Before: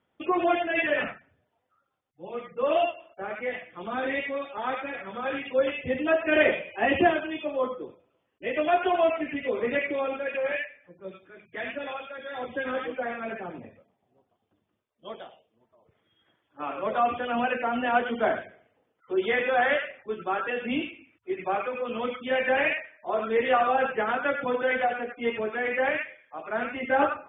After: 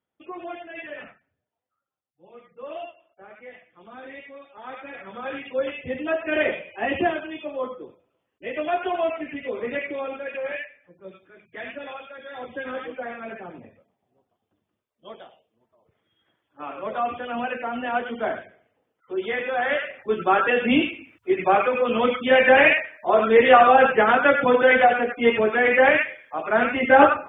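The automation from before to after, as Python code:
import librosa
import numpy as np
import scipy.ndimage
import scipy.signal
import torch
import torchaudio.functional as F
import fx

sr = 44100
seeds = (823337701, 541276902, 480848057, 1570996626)

y = fx.gain(x, sr, db=fx.line((4.5, -11.5), (5.03, -1.5), (19.61, -1.5), (20.15, 9.5)))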